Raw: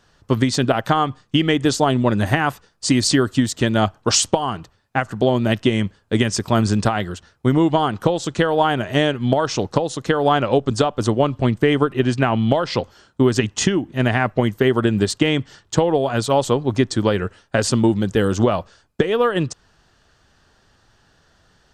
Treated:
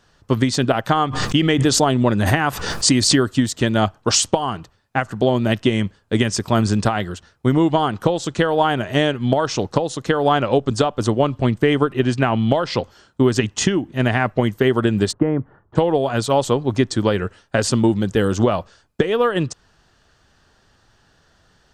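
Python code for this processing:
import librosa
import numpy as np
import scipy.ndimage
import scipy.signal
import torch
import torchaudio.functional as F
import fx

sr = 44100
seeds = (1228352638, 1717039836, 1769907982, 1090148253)

y = fx.pre_swell(x, sr, db_per_s=48.0, at=(0.92, 3.16))
y = fx.lowpass(y, sr, hz=1300.0, slope=24, at=(15.11, 15.75), fade=0.02)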